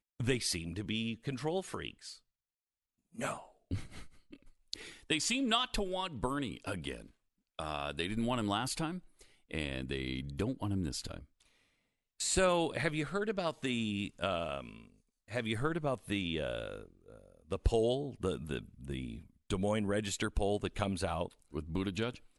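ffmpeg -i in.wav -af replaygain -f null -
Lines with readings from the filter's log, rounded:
track_gain = +16.6 dB
track_peak = 0.129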